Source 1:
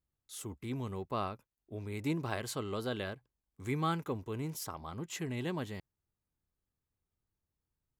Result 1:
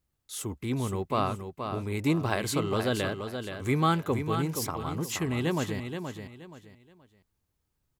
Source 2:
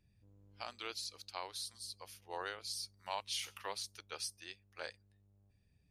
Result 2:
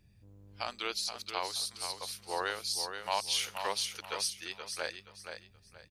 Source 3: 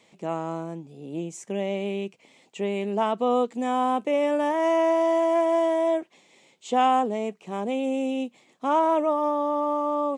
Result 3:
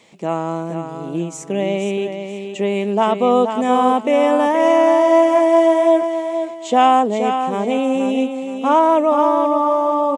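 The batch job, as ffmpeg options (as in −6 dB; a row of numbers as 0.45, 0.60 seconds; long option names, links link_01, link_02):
-af "aecho=1:1:475|950|1425:0.422|0.118|0.0331,volume=8dB"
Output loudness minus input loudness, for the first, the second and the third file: +8.5, +8.5, +8.5 LU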